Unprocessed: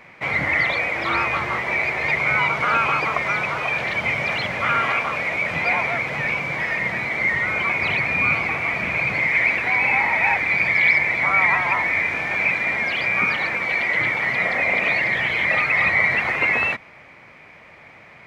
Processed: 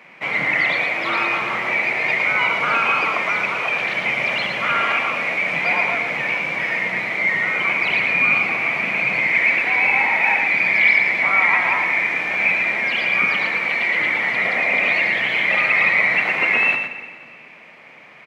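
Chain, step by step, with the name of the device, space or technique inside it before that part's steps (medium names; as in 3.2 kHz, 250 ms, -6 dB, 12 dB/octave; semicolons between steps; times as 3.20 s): PA in a hall (high-pass 160 Hz 24 dB/octave; peaking EQ 2.8 kHz +5.5 dB 0.42 oct; delay 113 ms -6 dB; reverberation RT60 1.9 s, pre-delay 23 ms, DRR 10 dB); trim -1 dB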